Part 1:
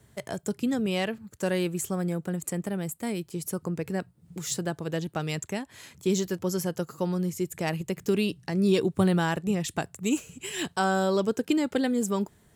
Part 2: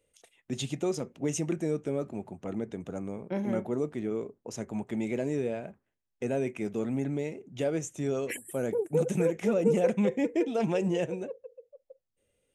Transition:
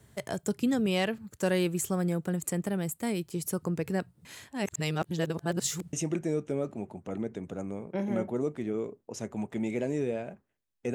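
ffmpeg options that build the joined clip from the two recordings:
-filter_complex "[0:a]apad=whole_dur=10.94,atrim=end=10.94,asplit=2[s0][s1];[s0]atrim=end=4.252[s2];[s1]atrim=start=4.248:end=5.932,asetpts=PTS-STARTPTS,areverse[s3];[1:a]atrim=start=1.298:end=6.31[s4];[s2][s3]acrossfade=d=0.004:c1=hsin:c2=hsin[s5];[s5][s4]acrossfade=d=0.004:c1=hsin:c2=hsin"

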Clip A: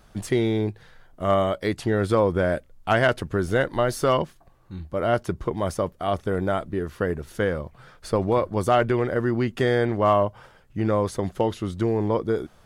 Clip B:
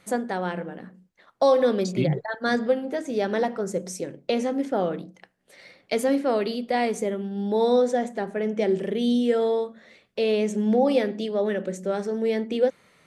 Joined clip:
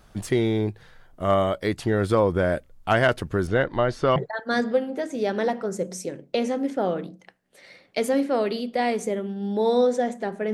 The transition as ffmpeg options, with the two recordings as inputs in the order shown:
-filter_complex "[0:a]asettb=1/sr,asplit=3[s0][s1][s2];[s0]atrim=end=3.474[s3];[s1]atrim=start=3.47:end=4.16,asetpts=PTS-STARTPTS,afade=t=in:d=0.004:c=qsin,afade=t=out:st=0.686:d=0.004:c=qsin,lowpass=3900[s4];[s2]atrim=start=4.156[s5];[s3][s4]acrossfade=d=0.004:c1=hsin:c2=qsin[s6];[s6][s5]acrossfade=d=0.004:c1=qsin:c2=hsin,apad=whole_dur=10.53,atrim=end=10.53,atrim=end=4.162[s7];[1:a]atrim=start=2.108:end=8.48[s8];[s7][s8]acrossfade=d=0.004:c1=hsin:c2=hsin"

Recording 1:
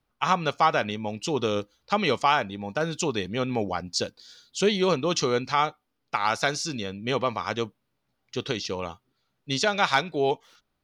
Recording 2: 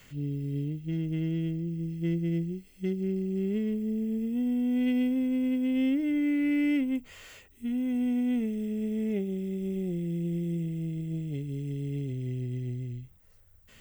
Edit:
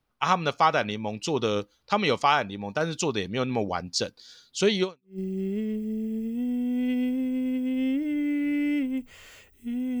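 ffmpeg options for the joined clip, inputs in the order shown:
-filter_complex "[0:a]apad=whole_dur=10,atrim=end=10,atrim=end=5.19,asetpts=PTS-STARTPTS[s0];[1:a]atrim=start=2.81:end=7.98,asetpts=PTS-STARTPTS[s1];[s0][s1]acrossfade=d=0.36:c1=exp:c2=exp"

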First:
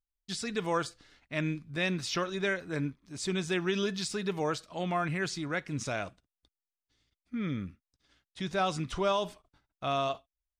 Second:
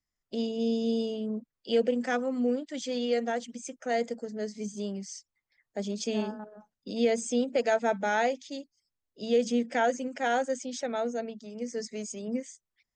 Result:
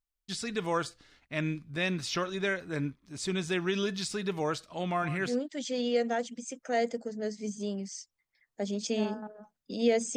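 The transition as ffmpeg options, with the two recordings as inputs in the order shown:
-filter_complex "[0:a]asettb=1/sr,asplit=3[s0][s1][s2];[s0]atrim=end=4.904[s3];[s1]atrim=start=4.9:end=5.37,asetpts=PTS-STARTPTS,afade=t=in:d=0.004:c=qsin,afade=t=out:st=0.466:d=0.004:c=qsin,aecho=1:1:123:0.224,atrim=end_sample=20727[s4];[s2]atrim=start=5.366[s5];[s3][s4]acrossfade=d=0.004:c1=hsin:c2=qsin[s6];[s6][s5]acrossfade=d=0.004:c1=qsin:c2=hsin,apad=whole_dur=10.16,atrim=end=10.16,atrim=end=5.37,asetpts=PTS-STARTPTS[s7];[1:a]atrim=start=2.42:end=7.33,asetpts=PTS-STARTPTS[s8];[s7][s8]acrossfade=d=0.12:c1=tri:c2=tri"

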